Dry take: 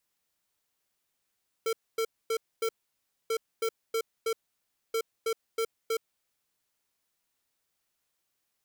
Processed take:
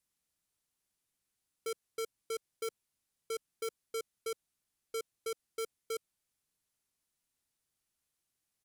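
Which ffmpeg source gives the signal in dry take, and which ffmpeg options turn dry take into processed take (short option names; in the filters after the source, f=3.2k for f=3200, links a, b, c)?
-f lavfi -i "aevalsrc='0.0376*(2*lt(mod(451*t,1),0.5)-1)*clip(min(mod(mod(t,1.64),0.32),0.07-mod(mod(t,1.64),0.32))/0.005,0,1)*lt(mod(t,1.64),1.28)':d=4.92:s=44100"
-af "firequalizer=gain_entry='entry(120,0);entry(510,-8);entry(11000,-1);entry(15000,-12)':delay=0.05:min_phase=1"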